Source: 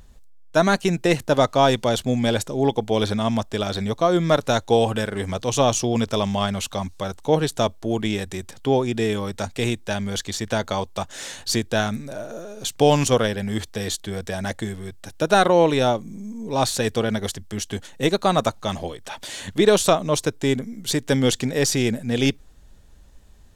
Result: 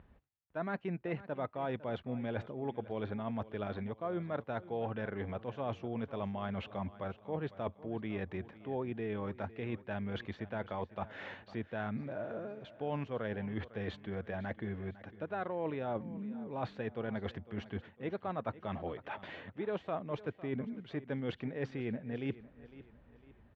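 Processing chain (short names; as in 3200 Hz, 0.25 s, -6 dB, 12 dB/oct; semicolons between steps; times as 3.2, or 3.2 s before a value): LPF 2400 Hz 24 dB/oct; reverse; compressor 6:1, threshold -29 dBFS, peak gain reduction 17.5 dB; reverse; HPF 72 Hz; feedback echo 0.504 s, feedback 40%, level -17 dB; gain -6 dB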